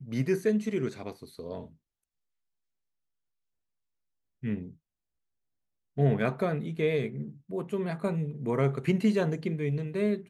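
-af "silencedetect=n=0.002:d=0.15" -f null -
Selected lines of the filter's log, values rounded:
silence_start: 1.75
silence_end: 4.42 | silence_duration: 2.68
silence_start: 4.76
silence_end: 5.97 | silence_duration: 1.21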